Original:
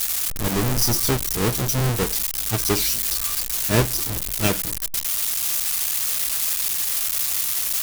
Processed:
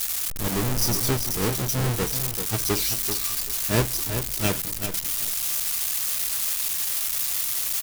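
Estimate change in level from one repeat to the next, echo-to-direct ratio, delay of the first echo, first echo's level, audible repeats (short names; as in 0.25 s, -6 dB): -14.0 dB, -8.5 dB, 0.387 s, -8.5 dB, 2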